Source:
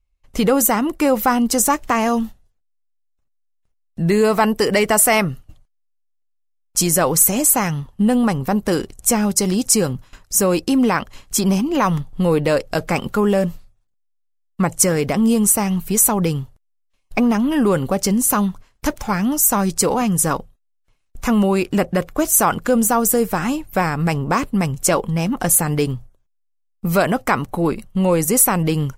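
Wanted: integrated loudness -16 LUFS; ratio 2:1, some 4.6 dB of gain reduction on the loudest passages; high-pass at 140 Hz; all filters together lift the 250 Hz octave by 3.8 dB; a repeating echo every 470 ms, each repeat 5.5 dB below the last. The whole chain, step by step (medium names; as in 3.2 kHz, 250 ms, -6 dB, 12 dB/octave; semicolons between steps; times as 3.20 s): high-pass 140 Hz; peaking EQ 250 Hz +5.5 dB; compression 2:1, threshold -17 dBFS; feedback delay 470 ms, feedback 53%, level -5.5 dB; trim +2.5 dB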